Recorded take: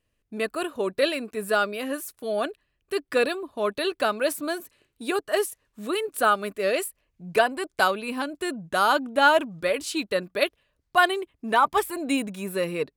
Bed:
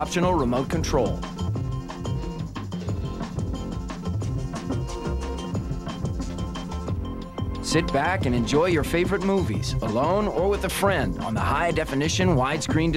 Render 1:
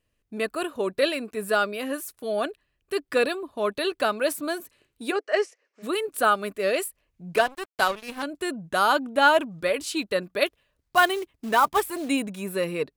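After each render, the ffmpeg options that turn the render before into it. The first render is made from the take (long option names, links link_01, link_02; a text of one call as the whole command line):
ffmpeg -i in.wav -filter_complex "[0:a]asplit=3[link_01][link_02][link_03];[link_01]afade=type=out:start_time=5.11:duration=0.02[link_04];[link_02]highpass=frequency=360:width=0.5412,highpass=frequency=360:width=1.3066,equalizer=frequency=510:width_type=q:width=4:gain=6,equalizer=frequency=1000:width_type=q:width=4:gain=-6,equalizer=frequency=2100:width_type=q:width=4:gain=6,equalizer=frequency=3600:width_type=q:width=4:gain=-9,equalizer=frequency=5500:width_type=q:width=4:gain=4,lowpass=frequency=6000:width=0.5412,lowpass=frequency=6000:width=1.3066,afade=type=in:start_time=5.11:duration=0.02,afade=type=out:start_time=5.82:duration=0.02[link_05];[link_03]afade=type=in:start_time=5.82:duration=0.02[link_06];[link_04][link_05][link_06]amix=inputs=3:normalize=0,asettb=1/sr,asplit=3[link_07][link_08][link_09];[link_07]atrim=end=7.364[link_10];[link_08]atrim=start=7.36:end=8.23,asetpts=PTS-STARTPTS,afade=type=in:duration=0.004:curve=qsin,afade=type=out:start_time=0.866:duration=0.004:curve=qsin,aeval=exprs='sgn(val(0))*max(abs(val(0))-0.0224,0)':channel_layout=same[link_11];[link_09]atrim=start=8.226[link_12];[link_10][link_11]acrossfade=duration=0.004:curve1=hsin:curve2=qsin[link_13];[link_13][link_12]acrossfade=duration=0.004:curve1=qsin:curve2=hsin,asettb=1/sr,asplit=3[link_14][link_15][link_16];[link_14]atrim=end=10.464[link_17];[link_15]atrim=start=10.46:end=12.09,asetpts=PTS-STARTPTS,afade=type=in:duration=0.004:curve=qsin,afade=type=out:start_time=1.626:duration=0.004:curve=qsin,acrusher=bits=4:mode=log:mix=0:aa=0.000001[link_18];[link_16]atrim=start=12.086[link_19];[link_17][link_18]acrossfade=duration=0.004:curve1=hsin:curve2=qsin[link_20];[link_20][link_19]acrossfade=duration=0.004:curve1=qsin:curve2=hsin" out.wav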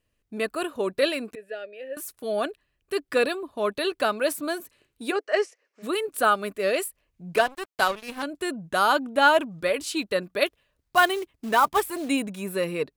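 ffmpeg -i in.wav -filter_complex "[0:a]asettb=1/sr,asplit=3[link_01][link_02][link_03];[link_01]atrim=end=1.354[link_04];[link_02]atrim=start=1.35:end=1.97,asetpts=PTS-STARTPTS,afade=type=in:duration=0.004:curve=qsin,afade=type=out:start_time=0.616:duration=0.004:curve=qsin,asplit=3[link_05][link_06][link_07];[link_05]bandpass=frequency=530:width_type=q:width=8,volume=0dB[link_08];[link_06]bandpass=frequency=1840:width_type=q:width=8,volume=-6dB[link_09];[link_07]bandpass=frequency=2480:width_type=q:width=8,volume=-9dB[link_10];[link_08][link_09][link_10]amix=inputs=3:normalize=0[link_11];[link_03]atrim=start=1.966[link_12];[link_04][link_11]acrossfade=duration=0.004:curve1=hsin:curve2=qsin[link_13];[link_13][link_12]acrossfade=duration=0.004:curve1=qsin:curve2=hsin" out.wav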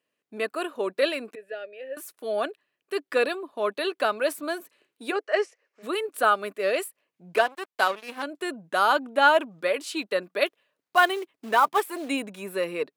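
ffmpeg -i in.wav -af "highpass=frequency=160:width=0.5412,highpass=frequency=160:width=1.3066,bass=frequency=250:gain=-10,treble=frequency=4000:gain=-5" out.wav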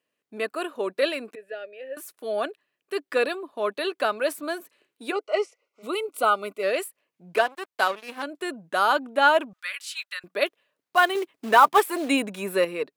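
ffmpeg -i in.wav -filter_complex "[0:a]asettb=1/sr,asplit=3[link_01][link_02][link_03];[link_01]atrim=end=5.124[link_04];[link_02]atrim=start=5.12:end=6.63,asetpts=PTS-STARTPTS,afade=type=in:duration=0.004:curve=qsin,afade=type=out:start_time=1.506:duration=0.004:curve=qsin,asuperstop=centerf=1700:order=12:qfactor=3.8[link_05];[link_03]atrim=start=6.626[link_06];[link_04][link_05]acrossfade=duration=0.004:curve1=hsin:curve2=qsin[link_07];[link_07][link_06]acrossfade=duration=0.004:curve1=qsin:curve2=hsin,asettb=1/sr,asplit=3[link_08][link_09][link_10];[link_08]atrim=end=9.534[link_11];[link_09]atrim=start=9.53:end=10.24,asetpts=PTS-STARTPTS,afade=type=in:duration=0.004:curve=qsin,afade=type=out:start_time=0.706:duration=0.004:curve=qsin,highpass=frequency=1400:width=0.5412,highpass=frequency=1400:width=1.3066[link_12];[link_10]atrim=start=10.236[link_13];[link_11][link_12]acrossfade=duration=0.004:curve1=hsin:curve2=qsin[link_14];[link_14][link_13]acrossfade=duration=0.004:curve1=qsin:curve2=hsin,asettb=1/sr,asplit=3[link_15][link_16][link_17];[link_15]atrim=end=11.154[link_18];[link_16]atrim=start=11.15:end=12.65,asetpts=PTS-STARTPTS,afade=type=in:duration=0.004:curve=qsin,afade=type=out:start_time=1.496:duration=0.004:curve=qsin,acontrast=37[link_19];[link_17]atrim=start=12.646[link_20];[link_18][link_19]acrossfade=duration=0.004:curve1=hsin:curve2=qsin[link_21];[link_21][link_20]acrossfade=duration=0.004:curve1=qsin:curve2=hsin" out.wav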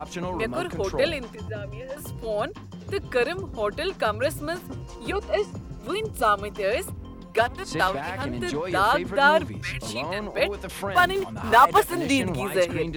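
ffmpeg -i in.wav -i bed.wav -filter_complex "[1:a]volume=-9dB[link_01];[0:a][link_01]amix=inputs=2:normalize=0" out.wav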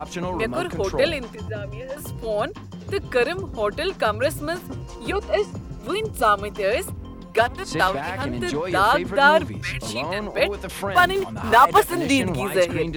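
ffmpeg -i in.wav -af "volume=3dB,alimiter=limit=-3dB:level=0:latency=1" out.wav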